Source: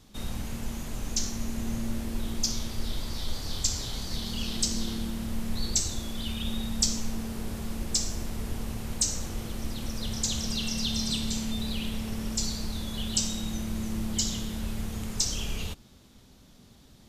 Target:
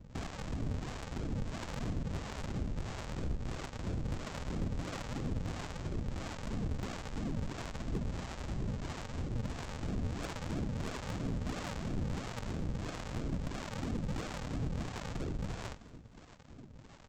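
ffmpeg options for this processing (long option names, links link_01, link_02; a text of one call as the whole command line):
ffmpeg -i in.wav -filter_complex "[0:a]afftfilt=real='hypot(re,im)*cos(2*PI*random(0))':imag='hypot(re,im)*sin(2*PI*random(1))':win_size=512:overlap=0.75,acompressor=threshold=-39dB:ratio=6,bandreject=frequency=309.2:width_type=h:width=4,bandreject=frequency=618.4:width_type=h:width=4,bandreject=frequency=927.6:width_type=h:width=4,aresample=16000,acrusher=samples=32:mix=1:aa=0.000001:lfo=1:lforange=32:lforate=3,aresample=44100,asoftclip=type=tanh:threshold=-39.5dB,acrossover=split=510[link_01][link_02];[link_01]aeval=exprs='val(0)*(1-0.7/2+0.7/2*cos(2*PI*1.5*n/s))':channel_layout=same[link_03];[link_02]aeval=exprs='val(0)*(1-0.7/2-0.7/2*cos(2*PI*1.5*n/s))':channel_layout=same[link_04];[link_03][link_04]amix=inputs=2:normalize=0,aecho=1:1:233|466|699|932:0.1|0.047|0.0221|0.0104,volume=11.5dB" out.wav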